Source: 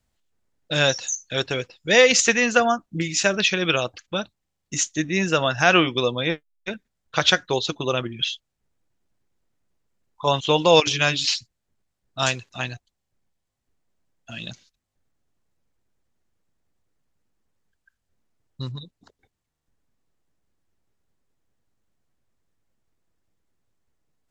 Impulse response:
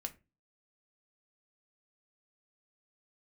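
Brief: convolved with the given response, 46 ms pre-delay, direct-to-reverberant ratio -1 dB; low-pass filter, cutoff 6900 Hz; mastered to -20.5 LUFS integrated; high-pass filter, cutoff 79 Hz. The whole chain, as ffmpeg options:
-filter_complex "[0:a]highpass=79,lowpass=6.9k,asplit=2[a][b];[1:a]atrim=start_sample=2205,adelay=46[c];[b][c]afir=irnorm=-1:irlink=0,volume=3dB[d];[a][d]amix=inputs=2:normalize=0,volume=-3dB"

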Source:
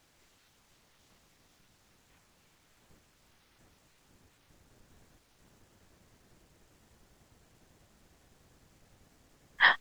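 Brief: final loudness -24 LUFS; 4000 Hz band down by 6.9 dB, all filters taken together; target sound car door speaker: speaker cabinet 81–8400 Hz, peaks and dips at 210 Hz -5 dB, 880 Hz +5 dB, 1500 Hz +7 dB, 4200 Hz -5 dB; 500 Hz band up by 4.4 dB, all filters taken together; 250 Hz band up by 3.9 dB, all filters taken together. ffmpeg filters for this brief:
-af "highpass=81,equalizer=f=210:t=q:w=4:g=-5,equalizer=f=880:t=q:w=4:g=5,equalizer=f=1.5k:t=q:w=4:g=7,equalizer=f=4.2k:t=q:w=4:g=-5,lowpass=f=8.4k:w=0.5412,lowpass=f=8.4k:w=1.3066,equalizer=f=250:t=o:g=6,equalizer=f=500:t=o:g=4,equalizer=f=4k:t=o:g=-8.5,volume=-0.5dB"

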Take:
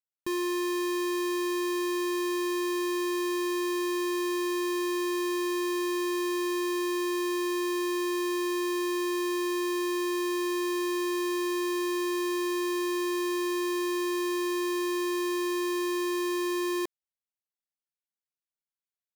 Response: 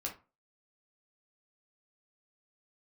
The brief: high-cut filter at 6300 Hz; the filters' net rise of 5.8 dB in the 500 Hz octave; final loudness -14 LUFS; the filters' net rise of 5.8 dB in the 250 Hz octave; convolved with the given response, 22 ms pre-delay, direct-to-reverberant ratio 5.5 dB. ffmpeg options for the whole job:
-filter_complex "[0:a]lowpass=6.3k,equalizer=f=250:t=o:g=7,equalizer=f=500:t=o:g=4.5,asplit=2[a][b];[1:a]atrim=start_sample=2205,adelay=22[c];[b][c]afir=irnorm=-1:irlink=0,volume=-6dB[d];[a][d]amix=inputs=2:normalize=0,volume=8.5dB"

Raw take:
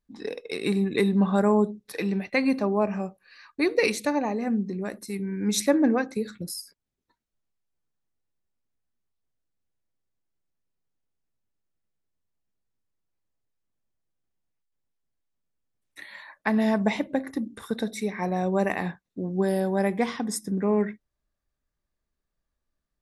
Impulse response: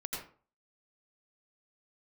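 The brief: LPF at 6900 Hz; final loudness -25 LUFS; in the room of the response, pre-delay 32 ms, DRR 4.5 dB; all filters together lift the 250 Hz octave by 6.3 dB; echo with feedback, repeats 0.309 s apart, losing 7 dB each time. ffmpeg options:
-filter_complex "[0:a]lowpass=6.9k,equalizer=f=250:t=o:g=8,aecho=1:1:309|618|927|1236|1545:0.447|0.201|0.0905|0.0407|0.0183,asplit=2[a][b];[1:a]atrim=start_sample=2205,adelay=32[c];[b][c]afir=irnorm=-1:irlink=0,volume=-6dB[d];[a][d]amix=inputs=2:normalize=0,volume=-5.5dB"

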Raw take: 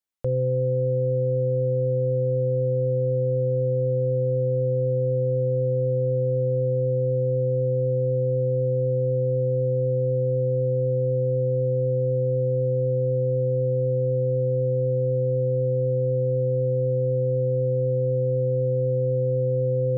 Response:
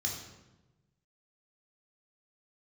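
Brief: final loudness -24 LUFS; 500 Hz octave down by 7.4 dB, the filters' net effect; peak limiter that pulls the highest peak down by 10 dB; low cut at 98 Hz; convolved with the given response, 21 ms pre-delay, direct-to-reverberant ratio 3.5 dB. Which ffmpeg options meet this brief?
-filter_complex "[0:a]highpass=98,equalizer=f=500:t=o:g=-7.5,alimiter=level_in=5.5dB:limit=-24dB:level=0:latency=1,volume=-5.5dB,asplit=2[a][b];[1:a]atrim=start_sample=2205,adelay=21[c];[b][c]afir=irnorm=-1:irlink=0,volume=-6dB[d];[a][d]amix=inputs=2:normalize=0,volume=2.5dB"

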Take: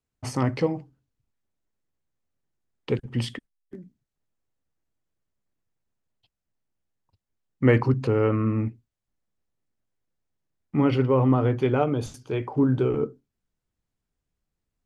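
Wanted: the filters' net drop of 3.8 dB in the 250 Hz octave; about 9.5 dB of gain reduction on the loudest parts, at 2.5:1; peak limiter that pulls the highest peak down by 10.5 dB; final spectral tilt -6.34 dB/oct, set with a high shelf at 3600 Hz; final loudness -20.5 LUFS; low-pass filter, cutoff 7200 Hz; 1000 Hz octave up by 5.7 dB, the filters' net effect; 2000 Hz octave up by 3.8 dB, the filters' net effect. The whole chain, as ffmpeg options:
-af "lowpass=7.2k,equalizer=f=250:t=o:g=-5,equalizer=f=1k:t=o:g=7,equalizer=f=2k:t=o:g=3.5,highshelf=f=3.6k:g=-4,acompressor=threshold=-29dB:ratio=2.5,volume=15.5dB,alimiter=limit=-9.5dB:level=0:latency=1"

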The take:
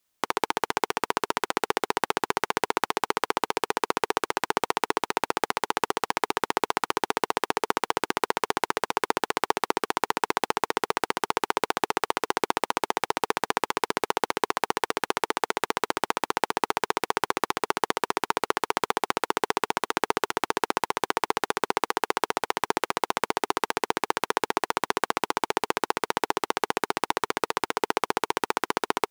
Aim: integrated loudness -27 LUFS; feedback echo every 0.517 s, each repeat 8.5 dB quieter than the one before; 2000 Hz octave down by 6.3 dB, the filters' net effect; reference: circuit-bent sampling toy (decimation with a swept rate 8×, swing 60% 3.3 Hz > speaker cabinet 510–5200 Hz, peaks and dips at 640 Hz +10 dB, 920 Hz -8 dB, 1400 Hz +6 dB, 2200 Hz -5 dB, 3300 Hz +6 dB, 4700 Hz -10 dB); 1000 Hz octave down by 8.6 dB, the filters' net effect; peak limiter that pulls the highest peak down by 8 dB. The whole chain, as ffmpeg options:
-af "equalizer=f=1k:t=o:g=-8,equalizer=f=2k:t=o:g=-7,alimiter=limit=-12dB:level=0:latency=1,aecho=1:1:517|1034|1551|2068:0.376|0.143|0.0543|0.0206,acrusher=samples=8:mix=1:aa=0.000001:lfo=1:lforange=4.8:lforate=3.3,highpass=510,equalizer=f=640:t=q:w=4:g=10,equalizer=f=920:t=q:w=4:g=-8,equalizer=f=1.4k:t=q:w=4:g=6,equalizer=f=2.2k:t=q:w=4:g=-5,equalizer=f=3.3k:t=q:w=4:g=6,equalizer=f=4.7k:t=q:w=4:g=-10,lowpass=f=5.2k:w=0.5412,lowpass=f=5.2k:w=1.3066,volume=11.5dB"

